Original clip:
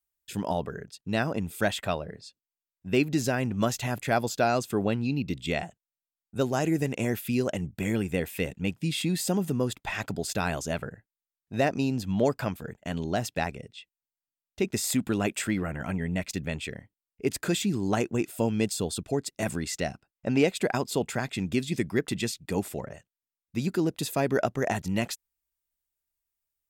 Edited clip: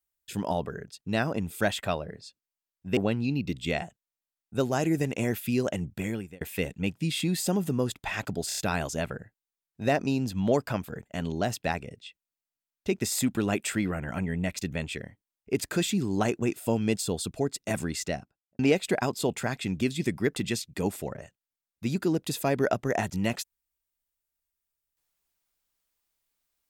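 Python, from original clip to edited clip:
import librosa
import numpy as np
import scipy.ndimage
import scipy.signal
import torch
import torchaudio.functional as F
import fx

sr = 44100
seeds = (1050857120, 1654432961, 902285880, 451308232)

y = fx.studio_fade_out(x, sr, start_s=19.71, length_s=0.6)
y = fx.edit(y, sr, fx.cut(start_s=2.97, length_s=1.81),
    fx.fade_out_span(start_s=7.73, length_s=0.49),
    fx.stutter(start_s=10.29, slice_s=0.03, count=4), tone=tone)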